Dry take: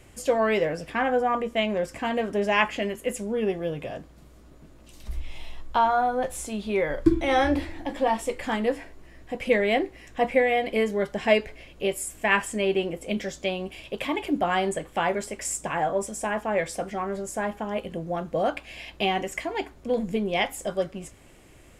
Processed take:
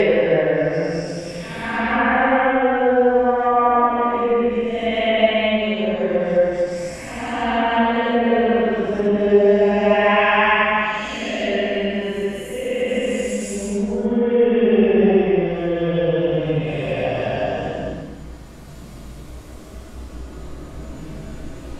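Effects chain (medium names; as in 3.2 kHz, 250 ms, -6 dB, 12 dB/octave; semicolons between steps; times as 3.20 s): recorder AGC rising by 6.2 dB/s; Paulstretch 5.2×, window 0.25 s, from 0.58 s; low-pass that closes with the level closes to 2.8 kHz, closed at -19.5 dBFS; trim +6 dB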